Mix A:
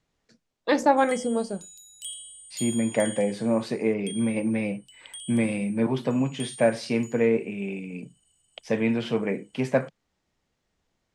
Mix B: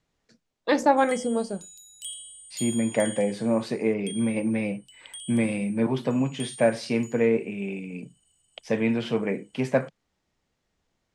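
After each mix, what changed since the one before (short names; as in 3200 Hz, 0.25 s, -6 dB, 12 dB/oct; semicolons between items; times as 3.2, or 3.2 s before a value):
none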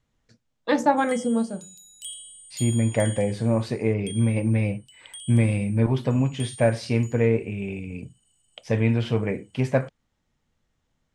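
second voice: remove steep high-pass 150 Hz 36 dB/oct; reverb: on, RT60 0.35 s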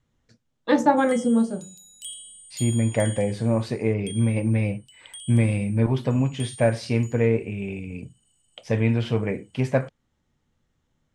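first voice: send +6.0 dB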